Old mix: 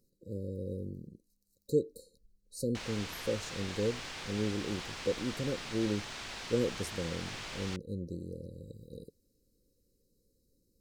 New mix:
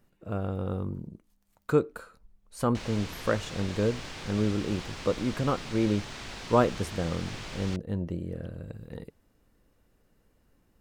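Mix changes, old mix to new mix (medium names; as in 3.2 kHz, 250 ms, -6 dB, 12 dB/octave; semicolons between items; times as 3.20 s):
speech: remove brick-wall FIR band-stop 570–3800 Hz; master: add bass shelf 460 Hz +8.5 dB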